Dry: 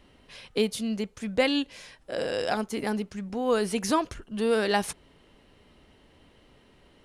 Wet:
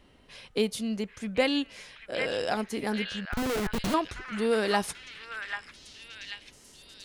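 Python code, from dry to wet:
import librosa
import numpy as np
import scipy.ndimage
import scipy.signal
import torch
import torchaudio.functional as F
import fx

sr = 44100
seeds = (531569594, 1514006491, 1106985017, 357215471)

y = fx.schmitt(x, sr, flips_db=-25.5, at=(3.25, 3.94))
y = fx.echo_stepped(y, sr, ms=789, hz=1700.0, octaves=0.7, feedback_pct=70, wet_db=-1.5)
y = y * 10.0 ** (-1.5 / 20.0)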